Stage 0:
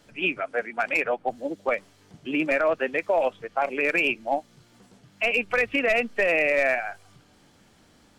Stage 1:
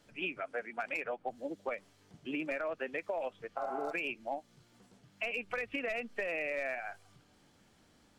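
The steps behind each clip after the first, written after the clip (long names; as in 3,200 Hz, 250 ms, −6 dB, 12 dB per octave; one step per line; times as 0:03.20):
healed spectral selection 0:03.61–0:03.90, 640–3,500 Hz before
downward compressor, threshold −25 dBFS, peak gain reduction 7.5 dB
level −8 dB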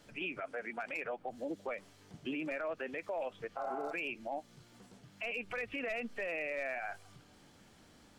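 brickwall limiter −35 dBFS, peak gain reduction 10.5 dB
level +4.5 dB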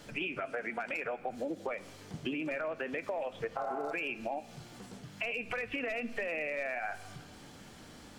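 downward compressor, threshold −42 dBFS, peak gain reduction 8 dB
convolution reverb RT60 1.6 s, pre-delay 3 ms, DRR 14 dB
level +9 dB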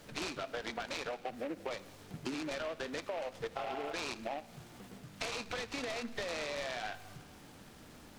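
background noise pink −63 dBFS
short delay modulated by noise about 1,500 Hz, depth 0.071 ms
level −3 dB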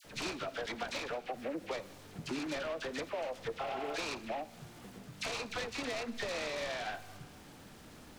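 all-pass dispersion lows, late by 48 ms, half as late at 1,400 Hz
level +1 dB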